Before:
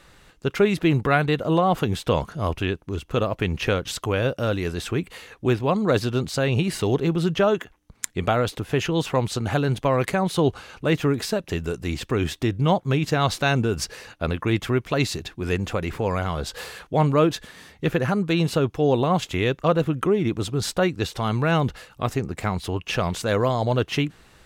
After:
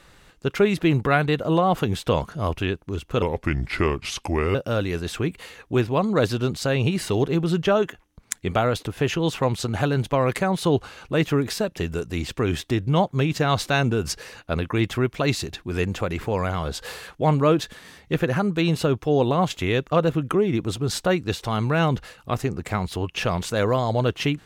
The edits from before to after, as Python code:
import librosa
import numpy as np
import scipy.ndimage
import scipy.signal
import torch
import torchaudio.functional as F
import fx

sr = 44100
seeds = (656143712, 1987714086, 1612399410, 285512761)

y = fx.edit(x, sr, fx.speed_span(start_s=3.22, length_s=1.05, speed=0.79), tone=tone)